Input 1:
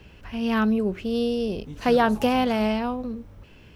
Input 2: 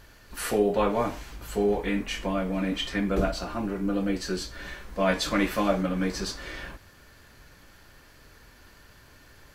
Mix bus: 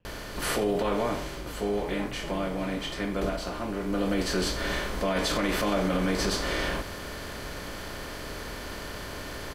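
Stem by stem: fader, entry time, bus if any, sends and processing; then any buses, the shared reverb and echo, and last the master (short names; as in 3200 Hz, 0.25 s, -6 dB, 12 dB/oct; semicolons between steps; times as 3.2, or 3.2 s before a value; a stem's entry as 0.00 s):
-16.0 dB, 0.00 s, no send, high shelf 2500 Hz -12 dB; ring modulator 88 Hz
+1.0 dB, 0.05 s, no send, per-bin compression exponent 0.6; auto duck -8 dB, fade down 1.65 s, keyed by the first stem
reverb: off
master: limiter -17.5 dBFS, peak gain reduction 11 dB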